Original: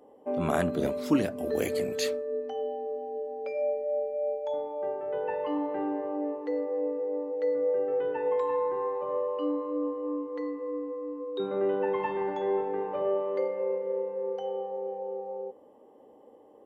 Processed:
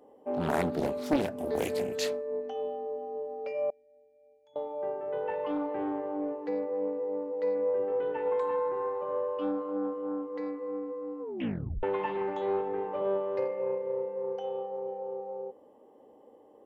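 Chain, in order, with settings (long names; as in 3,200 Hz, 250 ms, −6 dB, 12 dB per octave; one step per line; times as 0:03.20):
0:03.70–0:04.56: guitar amp tone stack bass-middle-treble 6-0-2
0:11.21: tape stop 0.62 s
highs frequency-modulated by the lows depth 0.63 ms
level −1.5 dB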